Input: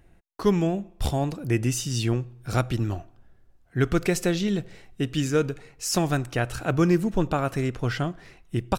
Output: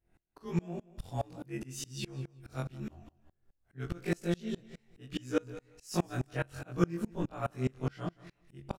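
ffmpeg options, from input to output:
-af "afftfilt=real='re':imag='-im':win_size=2048:overlap=0.75,aecho=1:1:176|352:0.178|0.0391,aeval=exprs='val(0)*pow(10,-29*if(lt(mod(-4.8*n/s,1),2*abs(-4.8)/1000),1-mod(-4.8*n/s,1)/(2*abs(-4.8)/1000),(mod(-4.8*n/s,1)-2*abs(-4.8)/1000)/(1-2*abs(-4.8)/1000))/20)':c=same"

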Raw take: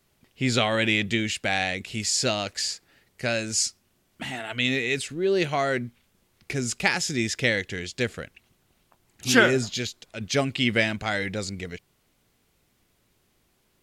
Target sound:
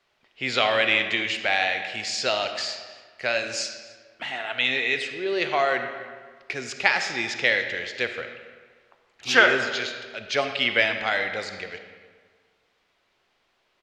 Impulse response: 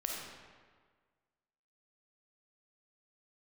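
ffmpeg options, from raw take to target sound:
-filter_complex "[0:a]acrossover=split=460 6100:gain=0.126 1 0.1[a][b][c];[a][b][c]amix=inputs=3:normalize=0,asplit=2[d][e];[e]adelay=291.5,volume=-21dB,highshelf=f=4k:g=-6.56[f];[d][f]amix=inputs=2:normalize=0,asplit=2[g][h];[1:a]atrim=start_sample=2205,lowpass=5.2k[i];[h][i]afir=irnorm=-1:irlink=0,volume=-2.5dB[j];[g][j]amix=inputs=2:normalize=0,volume=-1dB"

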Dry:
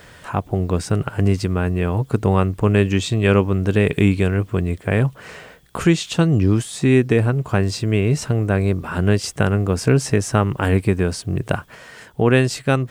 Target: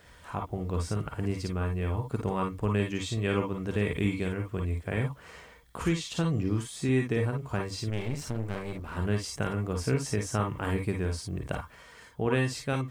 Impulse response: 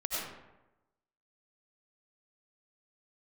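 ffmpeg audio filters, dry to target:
-filter_complex "[1:a]atrim=start_sample=2205,atrim=end_sample=4410,asetrate=74970,aresample=44100[a];[0:a][a]afir=irnorm=-1:irlink=0,asettb=1/sr,asplit=3[b][c][d];[b]atrim=end=7.904[e];[c]atrim=start=7.9:end=8.97,asetpts=PTS-STARTPTS,afade=t=in:d=0.004:c=qsin,afade=t=out:st=1.066:d=0.004:c=qsin,aeval=exprs='clip(val(0),-1,0.0211)':c=same[f];[d]atrim=start=8.966[g];[e][f]acrossfade=d=0.004:c1=hsin:c2=qsin[h];[h][g]acrossfade=d=0.004:c1=qsin:c2=hsin,volume=-6.5dB"

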